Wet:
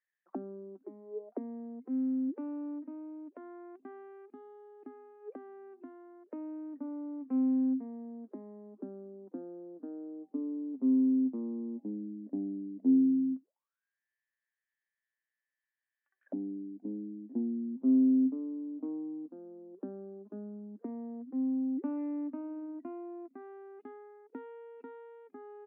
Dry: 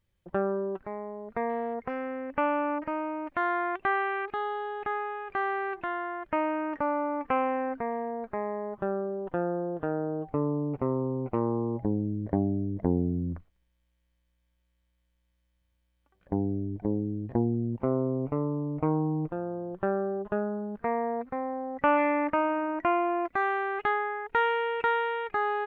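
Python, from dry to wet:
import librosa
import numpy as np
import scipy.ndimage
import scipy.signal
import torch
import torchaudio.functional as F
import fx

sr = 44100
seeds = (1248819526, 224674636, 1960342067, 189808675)

y = fx.auto_wah(x, sr, base_hz=260.0, top_hz=1800.0, q=18.0, full_db=-31.5, direction='down')
y = scipy.signal.sosfilt(scipy.signal.ellip(4, 1.0, 40, 200.0, 'highpass', fs=sr, output='sos'), y)
y = F.gain(torch.from_numpy(y), 9.0).numpy()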